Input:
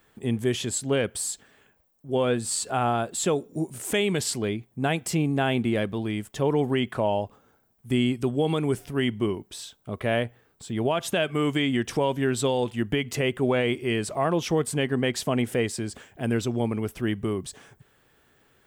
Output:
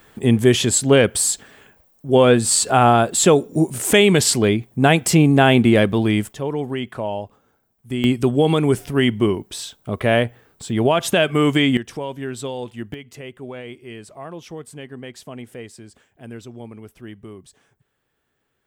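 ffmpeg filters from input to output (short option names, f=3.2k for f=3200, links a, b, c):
-af "asetnsamples=n=441:p=0,asendcmd='6.33 volume volume -1dB;8.04 volume volume 8dB;11.77 volume volume -4dB;12.94 volume volume -10.5dB',volume=11dB"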